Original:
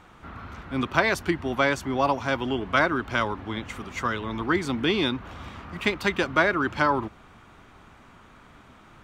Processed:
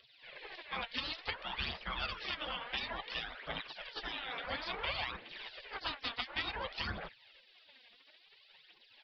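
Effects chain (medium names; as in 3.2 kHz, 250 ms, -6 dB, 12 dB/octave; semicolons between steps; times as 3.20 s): spectral gate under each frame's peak -20 dB weak; compression 3:1, threshold -41 dBFS, peak gain reduction 9 dB; phaser 0.57 Hz, delay 4.4 ms, feedback 56%; resampled via 11.025 kHz; trim +3.5 dB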